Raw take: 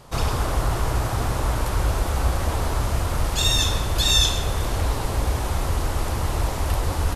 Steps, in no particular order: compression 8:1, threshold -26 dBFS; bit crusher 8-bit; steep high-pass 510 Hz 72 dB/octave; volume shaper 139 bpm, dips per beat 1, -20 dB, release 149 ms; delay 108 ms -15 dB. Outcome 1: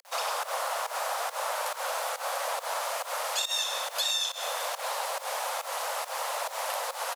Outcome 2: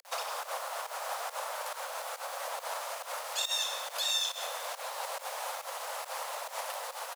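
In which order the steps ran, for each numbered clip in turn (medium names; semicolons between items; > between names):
delay > volume shaper > bit crusher > steep high-pass > compression; delay > volume shaper > compression > bit crusher > steep high-pass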